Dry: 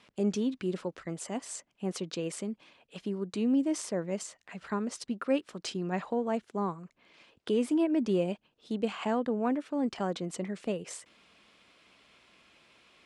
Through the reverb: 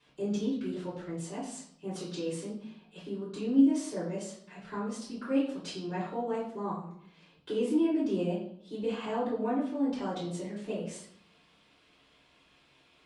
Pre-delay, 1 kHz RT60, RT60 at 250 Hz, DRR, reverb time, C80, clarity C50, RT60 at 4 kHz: 3 ms, 0.65 s, 0.85 s, -10.0 dB, 0.65 s, 8.0 dB, 3.5 dB, 0.55 s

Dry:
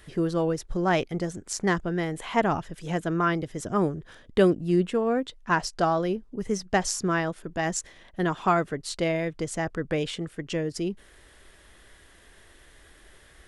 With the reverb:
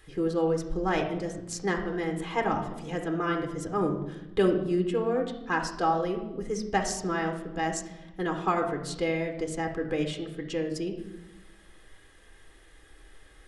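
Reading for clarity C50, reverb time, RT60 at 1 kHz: 7.5 dB, 0.95 s, 0.90 s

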